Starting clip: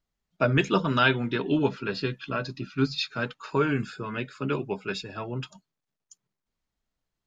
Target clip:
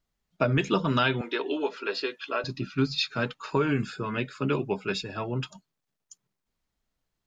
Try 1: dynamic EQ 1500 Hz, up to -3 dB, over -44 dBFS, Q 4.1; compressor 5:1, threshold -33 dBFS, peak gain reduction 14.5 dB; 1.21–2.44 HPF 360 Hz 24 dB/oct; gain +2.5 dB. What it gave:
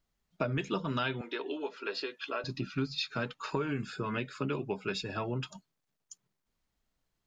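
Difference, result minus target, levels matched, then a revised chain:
compressor: peak gain reduction +8.5 dB
dynamic EQ 1500 Hz, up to -3 dB, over -44 dBFS, Q 4.1; compressor 5:1, threshold -22.5 dBFS, peak gain reduction 6 dB; 1.21–2.44 HPF 360 Hz 24 dB/oct; gain +2.5 dB

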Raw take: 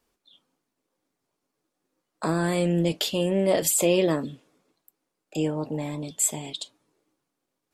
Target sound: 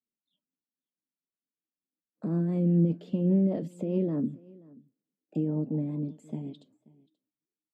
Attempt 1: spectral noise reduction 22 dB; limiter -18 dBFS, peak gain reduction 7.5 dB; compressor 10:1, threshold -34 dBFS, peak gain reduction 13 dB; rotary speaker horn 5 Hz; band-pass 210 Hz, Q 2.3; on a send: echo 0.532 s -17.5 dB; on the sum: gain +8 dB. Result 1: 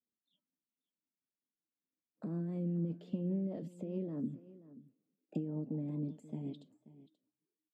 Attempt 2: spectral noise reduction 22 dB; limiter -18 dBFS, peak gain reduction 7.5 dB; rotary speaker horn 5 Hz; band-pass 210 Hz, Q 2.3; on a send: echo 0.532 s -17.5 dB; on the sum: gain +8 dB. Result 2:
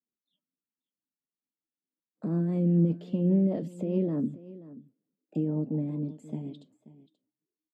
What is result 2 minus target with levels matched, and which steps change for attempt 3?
echo-to-direct +6 dB
change: echo 0.532 s -23.5 dB

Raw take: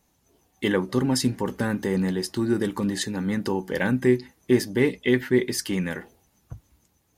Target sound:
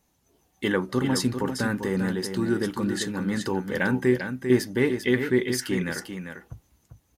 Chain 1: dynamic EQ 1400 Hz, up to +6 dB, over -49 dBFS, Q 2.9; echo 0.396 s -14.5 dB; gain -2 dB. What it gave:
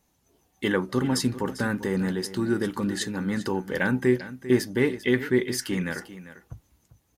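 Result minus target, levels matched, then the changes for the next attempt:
echo-to-direct -7 dB
change: echo 0.396 s -7.5 dB

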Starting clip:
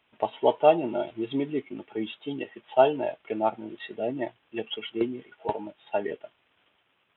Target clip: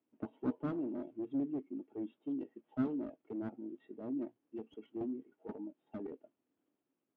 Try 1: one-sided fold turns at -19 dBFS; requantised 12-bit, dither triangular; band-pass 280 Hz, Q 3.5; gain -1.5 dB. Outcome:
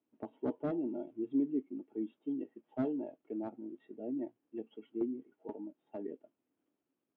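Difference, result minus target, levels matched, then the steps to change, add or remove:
one-sided fold: distortion -10 dB
change: one-sided fold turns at -29 dBFS

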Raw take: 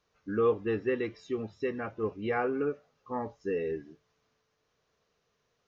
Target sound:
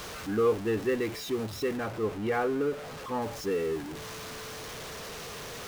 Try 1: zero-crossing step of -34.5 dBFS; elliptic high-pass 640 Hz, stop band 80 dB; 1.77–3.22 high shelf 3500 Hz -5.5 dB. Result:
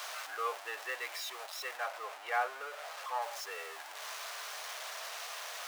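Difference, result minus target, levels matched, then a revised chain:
500 Hz band -8.0 dB
zero-crossing step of -34.5 dBFS; 1.77–3.22 high shelf 3500 Hz -5.5 dB

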